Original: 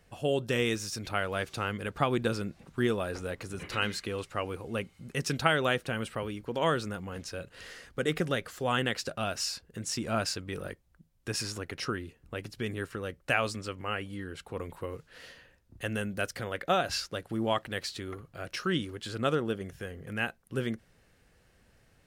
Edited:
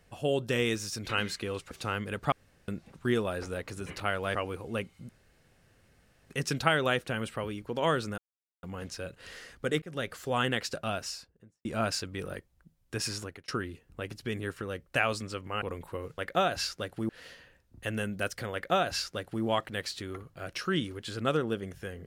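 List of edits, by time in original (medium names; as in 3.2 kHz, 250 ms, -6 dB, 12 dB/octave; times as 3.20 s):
1.09–1.44 s: swap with 3.73–4.35 s
2.05–2.41 s: room tone
5.09 s: insert room tone 1.21 s
6.97 s: insert silence 0.45 s
8.16–8.44 s: fade in
9.18–9.99 s: studio fade out
11.53–11.82 s: fade out
13.96–14.51 s: delete
16.51–17.42 s: copy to 15.07 s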